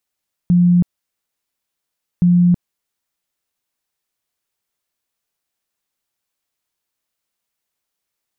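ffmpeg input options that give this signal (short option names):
-f lavfi -i "aevalsrc='0.376*sin(2*PI*176*mod(t,1.72))*lt(mod(t,1.72),57/176)':d=3.44:s=44100"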